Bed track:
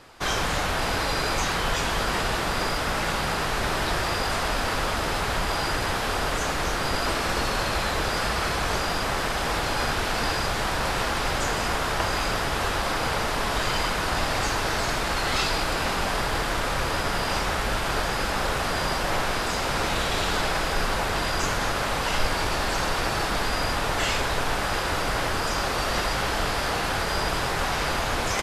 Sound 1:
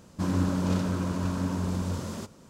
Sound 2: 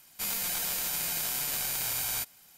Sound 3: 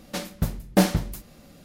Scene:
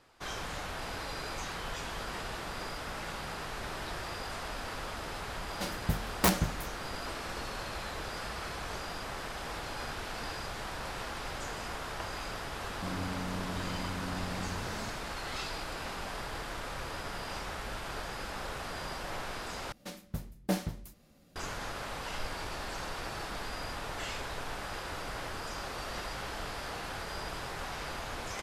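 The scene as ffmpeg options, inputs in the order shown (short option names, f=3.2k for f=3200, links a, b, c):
-filter_complex "[3:a]asplit=2[a][b];[0:a]volume=-13.5dB[c];[a]aeval=exprs='(mod(3.16*val(0)+1,2)-1)/3.16':c=same[d];[1:a]acompressor=threshold=-48dB:ratio=2:attack=18:release=42:knee=1:detection=peak[e];[c]asplit=2[f][g];[f]atrim=end=19.724[h];[b]atrim=end=1.64,asetpts=PTS-STARTPTS,volume=-12.5dB[i];[g]atrim=start=21.356[j];[d]atrim=end=1.64,asetpts=PTS-STARTPTS,volume=-6.5dB,afade=t=in:d=0.004:c=hsin,afade=t=out:st=1.636:d=0.004:c=hsin,adelay=5470[k];[e]atrim=end=2.49,asetpts=PTS-STARTPTS,volume=-0.5dB,afade=t=in:d=0.004:c=hsin,afade=t=out:st=2.486:d=0.004:c=hsin,adelay=12640[l];[h][i]acrossfade=d=0.004:c1=hsin:c2=hsin[m];[m][j]acrossfade=d=0.004:c1=hsin:c2=hsin[n];[n][k][l]amix=inputs=3:normalize=0"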